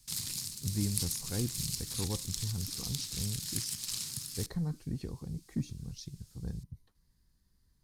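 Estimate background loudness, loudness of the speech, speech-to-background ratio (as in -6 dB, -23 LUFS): -36.5 LUFS, -39.5 LUFS, -3.0 dB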